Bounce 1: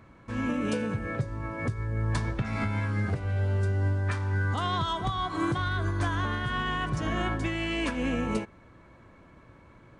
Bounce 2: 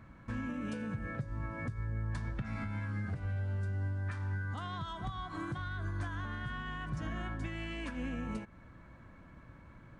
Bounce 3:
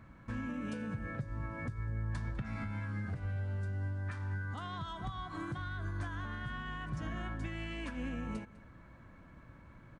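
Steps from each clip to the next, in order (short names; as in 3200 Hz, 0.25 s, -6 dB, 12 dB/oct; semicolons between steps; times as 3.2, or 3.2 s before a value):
fifteen-band EQ 100 Hz -3 dB, 400 Hz -7 dB, 1600 Hz +5 dB; compressor 6:1, threshold -35 dBFS, peak gain reduction 10.5 dB; low shelf 380 Hz +8.5 dB; gain -5.5 dB
echo 0.201 s -20.5 dB; gain -1 dB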